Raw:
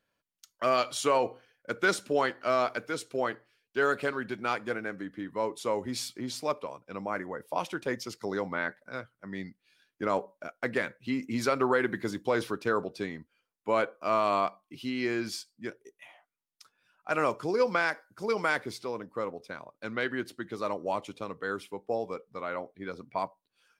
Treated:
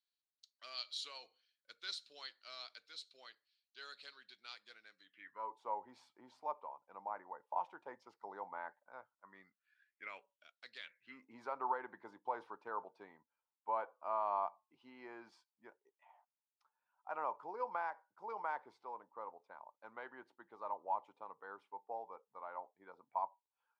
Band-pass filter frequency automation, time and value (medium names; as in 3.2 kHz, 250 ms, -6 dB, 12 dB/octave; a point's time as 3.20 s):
band-pass filter, Q 6.9
5.02 s 4.1 kHz
5.52 s 880 Hz
9.12 s 880 Hz
10.73 s 4.4 kHz
11.27 s 890 Hz